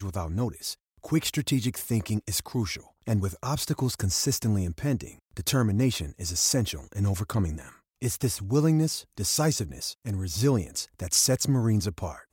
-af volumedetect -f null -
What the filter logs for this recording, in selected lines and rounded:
mean_volume: -27.5 dB
max_volume: -10.1 dB